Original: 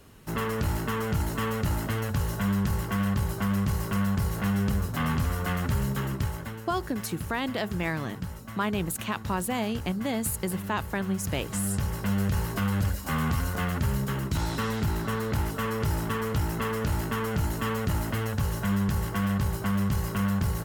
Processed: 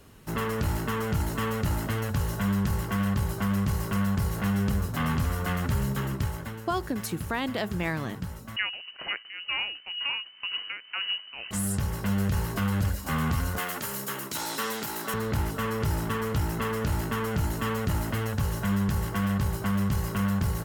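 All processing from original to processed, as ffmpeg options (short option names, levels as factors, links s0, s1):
-filter_complex "[0:a]asettb=1/sr,asplit=3[s0][s1][s2];[s0]atrim=end=8.564[s3];[s1]atrim=start=8.56:end=11.51,asetpts=PTS-STARTPTS,afade=t=in:d=0.004:c=qsin,afade=t=out:st=2.946:d=0.004:c=qsin,highpass=f=120:p=1,tremolo=f=2:d=0.79,lowpass=f=2600:t=q:w=0.5098,lowpass=f=2600:t=q:w=0.6013,lowpass=f=2600:t=q:w=0.9,lowpass=f=2600:t=q:w=2.563,afreqshift=-3100[s4];[s2]atrim=start=11.506[s5];[s3][s4]acrossfade=d=0.004:c1=hsin:c2=qsin[s6];[s6][s5]acrossfade=d=0.004:c1=qsin:c2=hsin,asettb=1/sr,asplit=3[s7][s8][s9];[s7]atrim=end=13.584[s10];[s8]atrim=start=13.58:end=15.14,asetpts=PTS-STARTPTS,afade=t=in:d=0.004:c=qsin,afade=t=out:st=1.556:d=0.004:c=qsin,highpass=340,aemphasis=mode=production:type=cd,asplit=2[s11][s12];[s12]adelay=14,volume=0.2[s13];[s11][s13]amix=inputs=2:normalize=0,atrim=end_sample=68796[s14];[s9]atrim=start=15.136[s15];[s10][s14]acrossfade=d=0.004:c1=hsin:c2=qsin[s16];[s16][s15]acrossfade=d=0.004:c1=qsin:c2=hsin"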